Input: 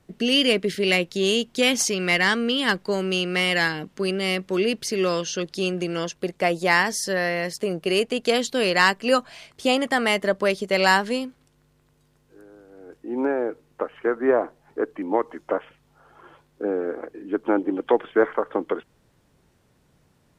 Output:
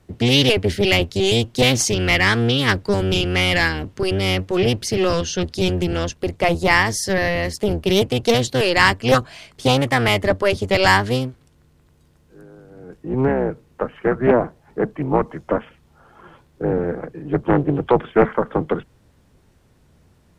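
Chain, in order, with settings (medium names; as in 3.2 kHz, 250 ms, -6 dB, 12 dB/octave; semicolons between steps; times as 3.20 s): octave divider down 1 oct, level +2 dB; loudspeaker Doppler distortion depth 0.33 ms; trim +3.5 dB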